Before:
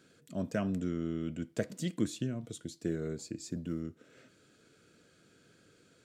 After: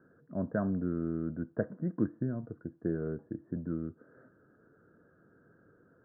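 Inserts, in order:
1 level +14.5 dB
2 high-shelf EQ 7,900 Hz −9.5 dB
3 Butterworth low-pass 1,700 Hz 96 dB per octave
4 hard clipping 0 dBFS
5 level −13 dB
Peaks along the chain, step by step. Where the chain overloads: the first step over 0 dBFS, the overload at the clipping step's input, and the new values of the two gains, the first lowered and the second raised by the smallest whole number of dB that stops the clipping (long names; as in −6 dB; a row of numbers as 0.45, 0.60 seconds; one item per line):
−1.5, −2.0, −3.5, −3.5, −16.5 dBFS
no step passes full scale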